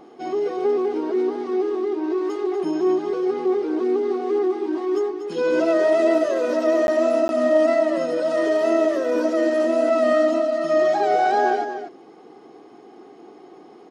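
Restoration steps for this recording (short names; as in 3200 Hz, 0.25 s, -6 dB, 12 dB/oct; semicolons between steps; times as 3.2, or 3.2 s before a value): interpolate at 6.87/7.28, 11 ms; inverse comb 0.24 s -9 dB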